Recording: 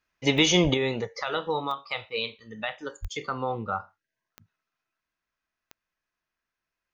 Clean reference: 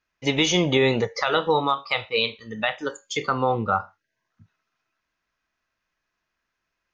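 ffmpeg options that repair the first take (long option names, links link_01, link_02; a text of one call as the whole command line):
ffmpeg -i in.wav -filter_complex "[0:a]adeclick=threshold=4,asplit=3[link_01][link_02][link_03];[link_01]afade=type=out:start_time=0.63:duration=0.02[link_04];[link_02]highpass=frequency=140:width=0.5412,highpass=frequency=140:width=1.3066,afade=type=in:start_time=0.63:duration=0.02,afade=type=out:start_time=0.75:duration=0.02[link_05];[link_03]afade=type=in:start_time=0.75:duration=0.02[link_06];[link_04][link_05][link_06]amix=inputs=3:normalize=0,asplit=3[link_07][link_08][link_09];[link_07]afade=type=out:start_time=3.01:duration=0.02[link_10];[link_08]highpass=frequency=140:width=0.5412,highpass=frequency=140:width=1.3066,afade=type=in:start_time=3.01:duration=0.02,afade=type=out:start_time=3.13:duration=0.02[link_11];[link_09]afade=type=in:start_time=3.13:duration=0.02[link_12];[link_10][link_11][link_12]amix=inputs=3:normalize=0,asetnsamples=nb_out_samples=441:pad=0,asendcmd='0.74 volume volume 7.5dB',volume=0dB" out.wav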